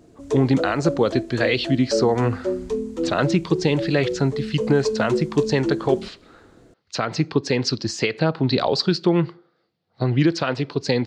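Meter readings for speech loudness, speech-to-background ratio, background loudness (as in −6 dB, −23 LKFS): −22.0 LKFS, 5.5 dB, −27.5 LKFS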